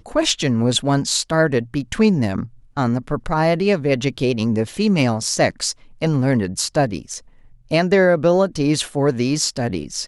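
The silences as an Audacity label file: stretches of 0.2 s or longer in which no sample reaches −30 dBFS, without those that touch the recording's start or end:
2.460000	2.770000	silence
5.720000	6.010000	silence
7.180000	7.710000	silence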